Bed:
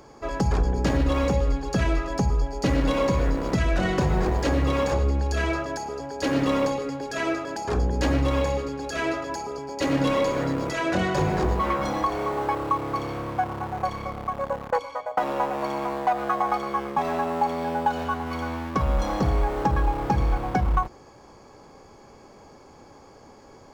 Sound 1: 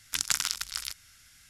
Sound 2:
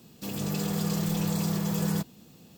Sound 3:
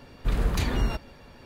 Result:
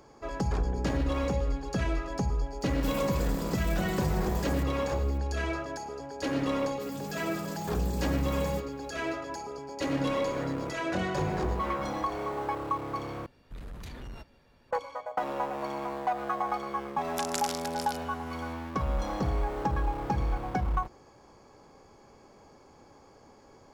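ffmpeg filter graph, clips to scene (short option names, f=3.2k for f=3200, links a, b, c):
-filter_complex "[2:a]asplit=2[a][b];[0:a]volume=-6.5dB[c];[a]acompressor=threshold=-31dB:ratio=6:attack=3.2:release=140:knee=1:detection=peak[d];[3:a]asoftclip=type=tanh:threshold=-24dB[e];[1:a]alimiter=level_in=6.5dB:limit=-1dB:release=50:level=0:latency=1[f];[c]asplit=2[g][h];[g]atrim=end=13.264[i];[e]atrim=end=1.45,asetpts=PTS-STARTPTS,volume=-13dB[j];[h]atrim=start=14.706[k];[d]atrim=end=2.57,asetpts=PTS-STARTPTS,volume=-2dB,afade=t=in:d=0.004:c=hsin,afade=t=out:st=2.566:d=0.004:c=hsin,adelay=2610[l];[b]atrim=end=2.57,asetpts=PTS-STARTPTS,volume=-10dB,afade=t=in:d=0.004:c=hsin,afade=t=out:st=2.566:d=0.004:c=hsin,adelay=290178S[m];[f]atrim=end=1.49,asetpts=PTS-STARTPTS,volume=-13dB,afade=t=in:d=0.004:c=hsin,afade=t=out:st=1.486:d=0.004:c=hsin,adelay=17040[n];[i][j]acrossfade=d=0.004:c1=hsin:c2=hsin[o];[o][k]acrossfade=d=0.004:c1=hsin:c2=hsin[p];[p][l][m][n]amix=inputs=4:normalize=0"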